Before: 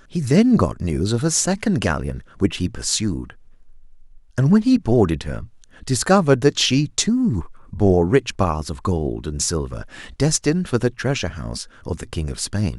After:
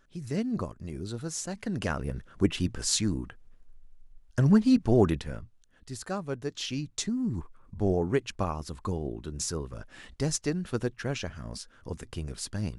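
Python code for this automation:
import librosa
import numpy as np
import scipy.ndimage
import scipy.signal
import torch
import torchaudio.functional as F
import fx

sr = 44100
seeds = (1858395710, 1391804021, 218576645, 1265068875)

y = fx.gain(x, sr, db=fx.line((1.51, -16.0), (2.17, -6.0), (5.07, -6.0), (5.91, -19.0), (6.43, -19.0), (7.19, -11.0)))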